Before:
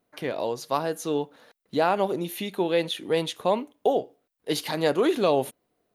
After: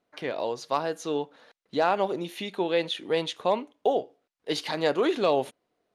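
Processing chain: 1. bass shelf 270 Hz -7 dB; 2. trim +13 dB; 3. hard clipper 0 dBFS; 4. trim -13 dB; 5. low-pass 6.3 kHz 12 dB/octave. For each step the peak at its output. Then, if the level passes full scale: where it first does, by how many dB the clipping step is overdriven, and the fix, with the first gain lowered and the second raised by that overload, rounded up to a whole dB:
-10.0 dBFS, +3.0 dBFS, 0.0 dBFS, -13.0 dBFS, -12.5 dBFS; step 2, 3.0 dB; step 2 +10 dB, step 4 -10 dB

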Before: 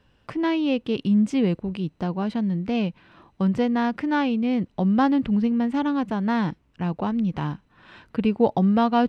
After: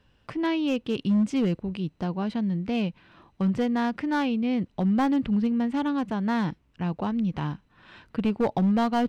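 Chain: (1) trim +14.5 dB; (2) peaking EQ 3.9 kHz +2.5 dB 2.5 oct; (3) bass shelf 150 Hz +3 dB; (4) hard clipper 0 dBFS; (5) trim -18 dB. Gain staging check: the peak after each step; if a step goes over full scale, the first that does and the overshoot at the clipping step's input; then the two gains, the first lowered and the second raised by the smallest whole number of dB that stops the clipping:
+7.0 dBFS, +7.0 dBFS, +7.5 dBFS, 0.0 dBFS, -18.0 dBFS; step 1, 7.5 dB; step 1 +6.5 dB, step 5 -10 dB

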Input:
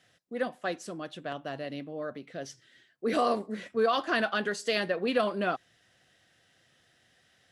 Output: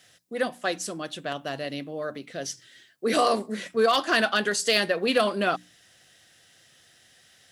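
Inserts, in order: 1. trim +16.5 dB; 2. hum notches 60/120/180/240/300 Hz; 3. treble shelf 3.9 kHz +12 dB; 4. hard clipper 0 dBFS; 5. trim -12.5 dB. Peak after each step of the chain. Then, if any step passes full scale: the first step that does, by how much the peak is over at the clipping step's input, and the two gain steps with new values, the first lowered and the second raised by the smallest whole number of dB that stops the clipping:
+2.0 dBFS, +2.5 dBFS, +5.0 dBFS, 0.0 dBFS, -12.5 dBFS; step 1, 5.0 dB; step 1 +11.5 dB, step 5 -7.5 dB

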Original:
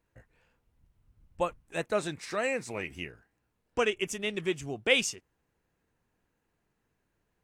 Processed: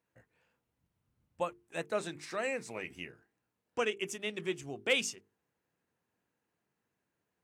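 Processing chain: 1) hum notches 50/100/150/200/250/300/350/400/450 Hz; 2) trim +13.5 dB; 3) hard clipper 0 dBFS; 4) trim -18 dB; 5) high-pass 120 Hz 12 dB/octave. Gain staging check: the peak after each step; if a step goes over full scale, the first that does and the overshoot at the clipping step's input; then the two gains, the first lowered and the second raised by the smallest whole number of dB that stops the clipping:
-9.0 dBFS, +4.5 dBFS, 0.0 dBFS, -18.0 dBFS, -16.0 dBFS; step 2, 4.5 dB; step 2 +8.5 dB, step 4 -13 dB

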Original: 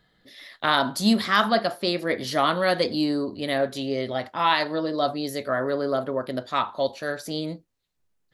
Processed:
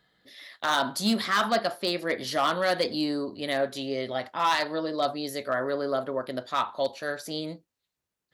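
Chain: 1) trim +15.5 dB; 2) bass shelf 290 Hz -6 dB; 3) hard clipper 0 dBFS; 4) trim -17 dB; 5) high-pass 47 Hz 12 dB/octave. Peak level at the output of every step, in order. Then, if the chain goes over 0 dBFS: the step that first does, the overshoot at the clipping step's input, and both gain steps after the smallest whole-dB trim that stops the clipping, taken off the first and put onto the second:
+10.0 dBFS, +10.0 dBFS, 0.0 dBFS, -17.0 dBFS, -15.0 dBFS; step 1, 10.0 dB; step 1 +5.5 dB, step 4 -7 dB

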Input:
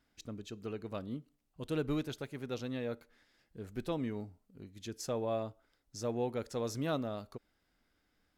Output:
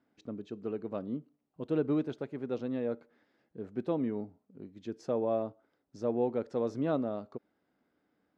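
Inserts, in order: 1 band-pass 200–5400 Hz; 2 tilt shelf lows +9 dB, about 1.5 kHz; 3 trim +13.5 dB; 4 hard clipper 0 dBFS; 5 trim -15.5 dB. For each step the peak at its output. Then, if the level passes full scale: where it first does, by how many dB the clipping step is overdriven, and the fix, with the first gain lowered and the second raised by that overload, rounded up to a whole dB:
-21.5 dBFS, -16.0 dBFS, -2.5 dBFS, -2.5 dBFS, -18.0 dBFS; nothing clips

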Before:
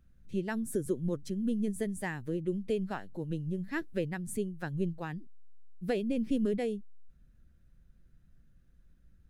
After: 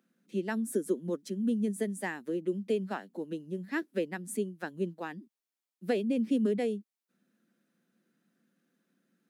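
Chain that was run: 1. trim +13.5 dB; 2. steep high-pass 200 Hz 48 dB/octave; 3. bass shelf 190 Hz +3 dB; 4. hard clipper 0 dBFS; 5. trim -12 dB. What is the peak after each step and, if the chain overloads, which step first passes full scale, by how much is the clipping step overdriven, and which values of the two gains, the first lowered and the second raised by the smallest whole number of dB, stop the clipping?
-6.0 dBFS, -7.0 dBFS, -6.0 dBFS, -6.0 dBFS, -18.0 dBFS; nothing clips

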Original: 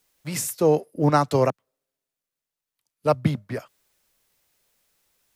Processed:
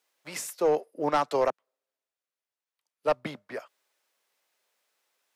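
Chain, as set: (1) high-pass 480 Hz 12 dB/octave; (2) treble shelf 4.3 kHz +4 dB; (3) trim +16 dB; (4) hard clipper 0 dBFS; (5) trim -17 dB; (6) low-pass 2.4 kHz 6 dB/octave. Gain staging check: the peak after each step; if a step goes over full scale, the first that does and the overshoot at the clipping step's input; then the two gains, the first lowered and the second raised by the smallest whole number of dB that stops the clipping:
-7.0 dBFS, -6.5 dBFS, +9.5 dBFS, 0.0 dBFS, -17.0 dBFS, -17.0 dBFS; step 3, 9.5 dB; step 3 +6 dB, step 5 -7 dB

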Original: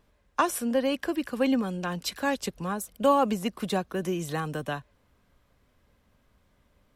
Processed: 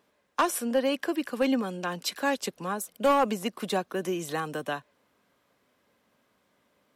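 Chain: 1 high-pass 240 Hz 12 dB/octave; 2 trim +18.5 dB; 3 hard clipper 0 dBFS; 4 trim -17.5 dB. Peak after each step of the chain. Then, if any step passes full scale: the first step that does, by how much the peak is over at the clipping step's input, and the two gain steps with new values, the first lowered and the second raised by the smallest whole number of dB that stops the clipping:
-11.0 dBFS, +7.5 dBFS, 0.0 dBFS, -17.5 dBFS; step 2, 7.5 dB; step 2 +10.5 dB, step 4 -9.5 dB

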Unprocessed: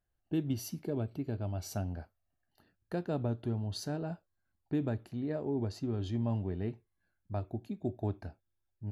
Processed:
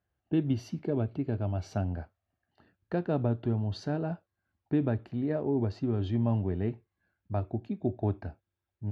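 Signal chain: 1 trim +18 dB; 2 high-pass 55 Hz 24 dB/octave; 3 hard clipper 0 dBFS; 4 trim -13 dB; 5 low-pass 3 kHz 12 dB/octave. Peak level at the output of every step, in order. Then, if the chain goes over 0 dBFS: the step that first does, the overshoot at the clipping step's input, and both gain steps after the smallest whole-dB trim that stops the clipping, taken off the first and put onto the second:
-3.0 dBFS, -2.5 dBFS, -2.5 dBFS, -15.5 dBFS, -15.5 dBFS; nothing clips

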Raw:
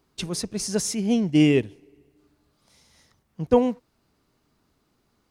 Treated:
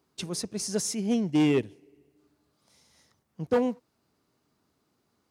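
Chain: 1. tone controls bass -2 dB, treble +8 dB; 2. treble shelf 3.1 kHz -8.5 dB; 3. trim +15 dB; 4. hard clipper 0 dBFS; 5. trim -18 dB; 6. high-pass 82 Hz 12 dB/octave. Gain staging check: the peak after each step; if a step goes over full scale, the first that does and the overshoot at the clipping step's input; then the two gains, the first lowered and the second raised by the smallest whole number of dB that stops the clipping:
-5.5 dBFS, -6.0 dBFS, +9.0 dBFS, 0.0 dBFS, -18.0 dBFS, -14.5 dBFS; step 3, 9.0 dB; step 3 +6 dB, step 5 -9 dB

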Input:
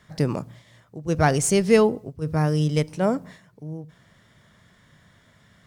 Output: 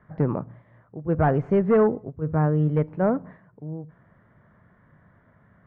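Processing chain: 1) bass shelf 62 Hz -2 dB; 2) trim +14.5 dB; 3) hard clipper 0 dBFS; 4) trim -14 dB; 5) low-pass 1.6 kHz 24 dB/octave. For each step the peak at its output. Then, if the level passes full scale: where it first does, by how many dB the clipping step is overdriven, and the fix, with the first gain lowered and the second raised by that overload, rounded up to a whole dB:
-5.0 dBFS, +9.5 dBFS, 0.0 dBFS, -14.0 dBFS, -12.5 dBFS; step 2, 9.5 dB; step 2 +4.5 dB, step 4 -4 dB

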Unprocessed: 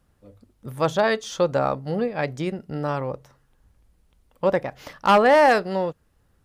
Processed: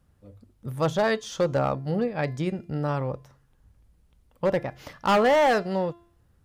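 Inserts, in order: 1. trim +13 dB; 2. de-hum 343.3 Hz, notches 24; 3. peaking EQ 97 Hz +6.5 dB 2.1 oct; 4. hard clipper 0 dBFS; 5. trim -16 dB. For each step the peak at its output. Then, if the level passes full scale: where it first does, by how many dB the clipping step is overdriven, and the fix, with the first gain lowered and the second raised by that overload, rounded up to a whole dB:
+4.0 dBFS, +5.0 dBFS, +7.0 dBFS, 0.0 dBFS, -16.0 dBFS; step 1, 7.0 dB; step 1 +6 dB, step 5 -9 dB

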